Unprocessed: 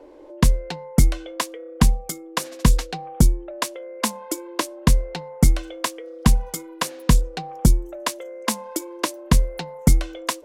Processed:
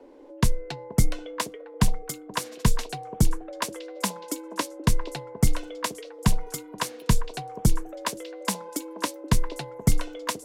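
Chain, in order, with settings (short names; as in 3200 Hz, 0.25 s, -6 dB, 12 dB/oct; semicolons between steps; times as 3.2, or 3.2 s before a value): delay with a stepping band-pass 0.478 s, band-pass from 480 Hz, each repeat 1.4 oct, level -6 dB; frequency shift -24 Hz; gain -4 dB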